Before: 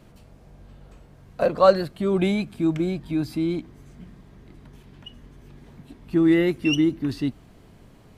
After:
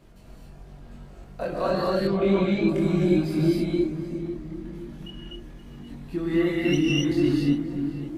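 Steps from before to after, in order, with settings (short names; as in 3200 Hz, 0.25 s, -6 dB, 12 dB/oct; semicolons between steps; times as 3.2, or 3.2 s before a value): limiter -16 dBFS, peak gain reduction 12 dB; darkening echo 0.526 s, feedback 42%, low-pass 1300 Hz, level -7.5 dB; non-linear reverb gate 0.29 s rising, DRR -4 dB; chorus voices 6, 0.27 Hz, delay 23 ms, depth 3 ms; 2.07–2.69 air absorption 120 m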